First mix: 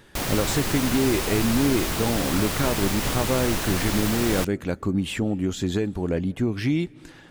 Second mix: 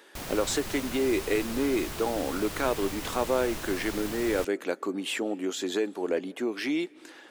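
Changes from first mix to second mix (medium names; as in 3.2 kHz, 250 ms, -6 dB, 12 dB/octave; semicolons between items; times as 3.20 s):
speech: add high-pass 320 Hz 24 dB/octave; background -10.5 dB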